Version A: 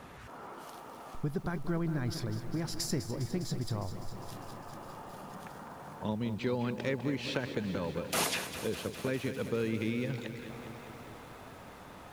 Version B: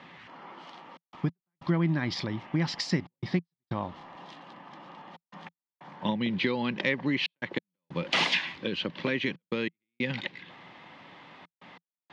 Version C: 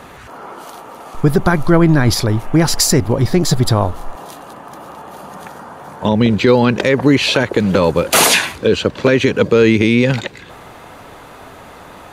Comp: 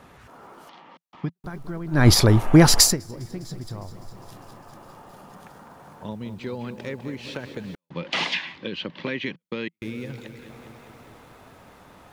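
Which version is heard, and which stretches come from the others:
A
0:00.69–0:01.44: punch in from B
0:01.99–0:02.89: punch in from C, crossfade 0.16 s
0:07.75–0:09.82: punch in from B

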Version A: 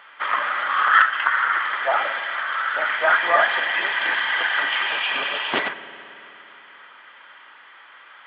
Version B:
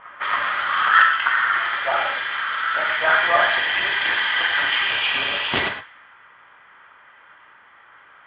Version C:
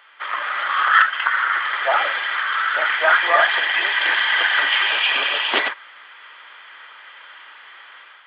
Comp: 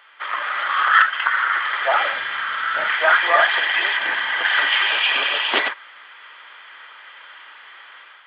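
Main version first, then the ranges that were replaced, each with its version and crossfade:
C
0:02.12–0:02.88: punch in from B
0:03.97–0:04.45: punch in from A

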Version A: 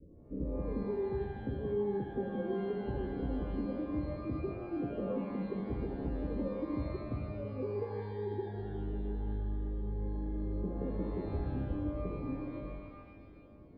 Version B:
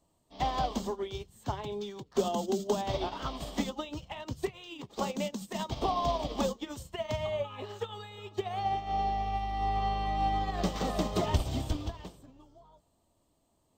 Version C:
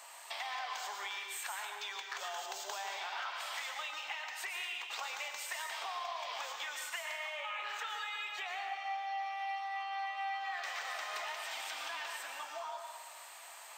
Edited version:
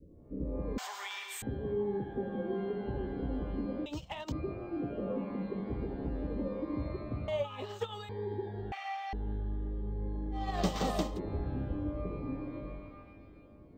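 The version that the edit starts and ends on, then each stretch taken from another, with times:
A
0:00.78–0:01.42: punch in from C
0:03.86–0:04.32: punch in from B
0:07.28–0:08.09: punch in from B
0:08.72–0:09.13: punch in from C
0:10.43–0:11.08: punch in from B, crossfade 0.24 s

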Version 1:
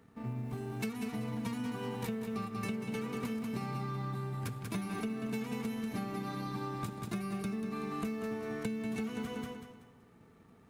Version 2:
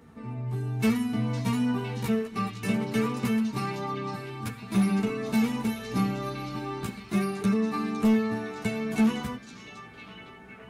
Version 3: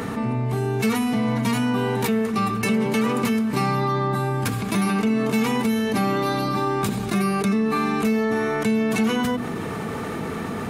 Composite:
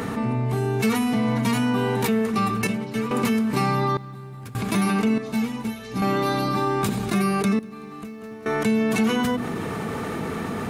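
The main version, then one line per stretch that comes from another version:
3
0:02.67–0:03.11: punch in from 2
0:03.97–0:04.55: punch in from 1
0:05.18–0:06.02: punch in from 2
0:07.59–0:08.46: punch in from 1

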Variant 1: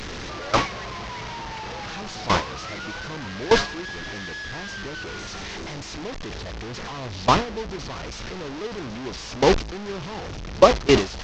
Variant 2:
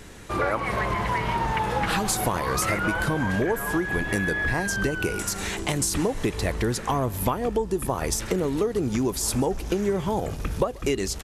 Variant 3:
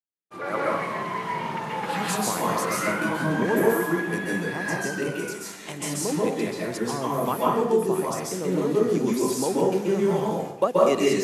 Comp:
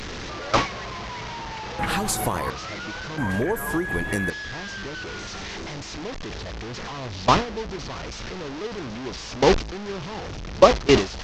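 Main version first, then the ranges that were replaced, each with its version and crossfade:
1
0:01.79–0:02.50: punch in from 2
0:03.18–0:04.30: punch in from 2
not used: 3

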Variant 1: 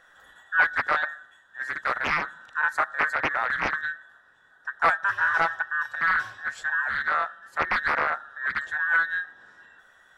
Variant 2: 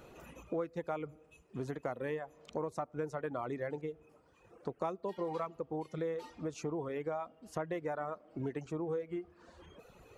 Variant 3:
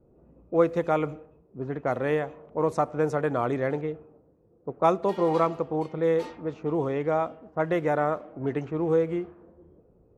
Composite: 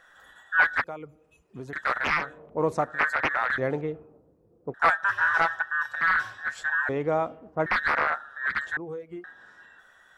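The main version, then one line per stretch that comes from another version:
1
0:00.84–0:01.73: punch in from 2
0:02.29–0:02.89: punch in from 3, crossfade 0.24 s
0:03.58–0:04.74: punch in from 3
0:06.89–0:07.66: punch in from 3
0:08.77–0:09.24: punch in from 2

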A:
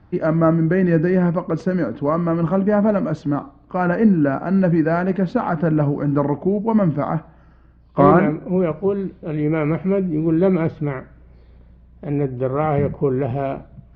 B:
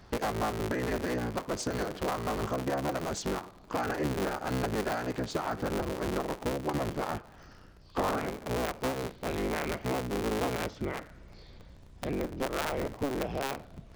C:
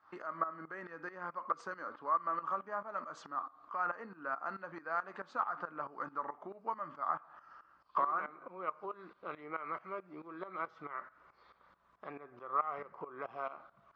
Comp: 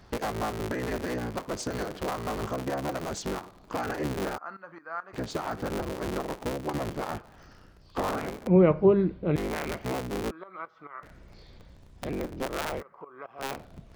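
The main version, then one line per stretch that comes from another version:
B
0:04.38–0:05.13: punch in from C
0:08.47–0:09.36: punch in from A
0:10.31–0:11.03: punch in from C
0:12.80–0:13.41: punch in from C, crossfade 0.06 s

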